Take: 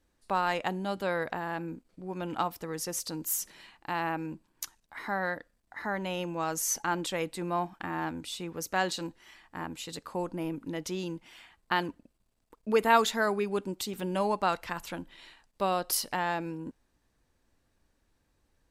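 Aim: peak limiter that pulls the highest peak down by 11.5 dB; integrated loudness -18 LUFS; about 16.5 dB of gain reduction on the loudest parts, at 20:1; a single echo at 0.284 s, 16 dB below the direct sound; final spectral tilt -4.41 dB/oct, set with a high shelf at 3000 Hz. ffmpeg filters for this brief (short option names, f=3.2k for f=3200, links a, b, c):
-af "highshelf=f=3k:g=-3.5,acompressor=threshold=-34dB:ratio=20,alimiter=level_in=6.5dB:limit=-24dB:level=0:latency=1,volume=-6.5dB,aecho=1:1:284:0.158,volume=23.5dB"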